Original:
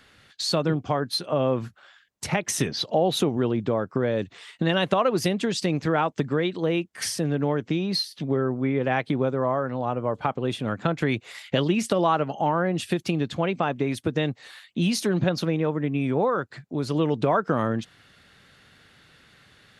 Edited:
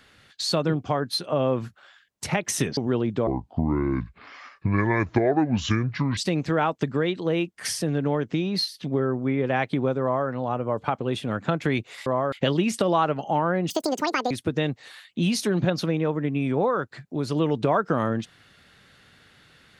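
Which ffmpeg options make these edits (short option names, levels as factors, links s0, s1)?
-filter_complex "[0:a]asplit=8[s0][s1][s2][s3][s4][s5][s6][s7];[s0]atrim=end=2.772[s8];[s1]atrim=start=3.268:end=3.774[s9];[s2]atrim=start=3.77:end=5.54,asetpts=PTS-STARTPTS,asetrate=26901,aresample=44100,atrim=end_sample=127962,asetpts=PTS-STARTPTS[s10];[s3]atrim=start=5.536:end=11.432[s11];[s4]atrim=start=9.388:end=9.652[s12];[s5]atrim=start=11.428:end=12.814[s13];[s6]atrim=start=12.81:end=13.9,asetpts=PTS-STARTPTS,asetrate=79380,aresample=44100[s14];[s7]atrim=start=13.896[s15];[s8][s9]acrossfade=d=0.004:c1=hsin:c2=hsin[s16];[s16][s10]acrossfade=d=0.004:c1=hsin:c2=hsin[s17];[s17][s11]acrossfade=d=0.004:c1=hsin:c2=hsin[s18];[s18][s12]acrossfade=d=0.004:c1=hsin:c2=hsin[s19];[s19][s13]acrossfade=d=0.004:c1=hsin:c2=hsin[s20];[s20][s14]acrossfade=d=0.004:c1=hsin:c2=hsin[s21];[s21][s15]acrossfade=d=0.004:c1=hsin:c2=hsin"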